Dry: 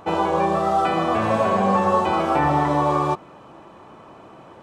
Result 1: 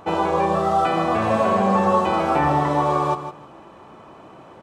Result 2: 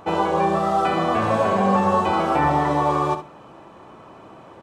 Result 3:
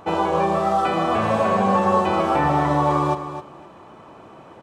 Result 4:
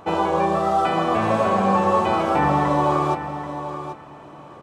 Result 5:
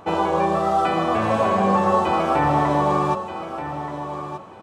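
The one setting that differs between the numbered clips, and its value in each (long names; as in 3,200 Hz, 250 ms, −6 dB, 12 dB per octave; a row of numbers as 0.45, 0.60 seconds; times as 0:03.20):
repeating echo, delay time: 159, 66, 260, 785, 1,229 milliseconds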